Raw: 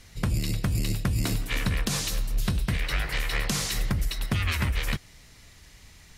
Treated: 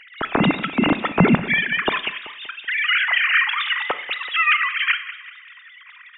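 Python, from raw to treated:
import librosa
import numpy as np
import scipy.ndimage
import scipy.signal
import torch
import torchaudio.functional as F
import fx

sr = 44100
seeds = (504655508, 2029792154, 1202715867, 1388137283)

y = fx.sine_speech(x, sr)
y = fx.echo_feedback(y, sr, ms=190, feedback_pct=45, wet_db=-15)
y = fx.rev_schroeder(y, sr, rt60_s=0.51, comb_ms=26, drr_db=13.5)
y = y * librosa.db_to_amplitude(5.0)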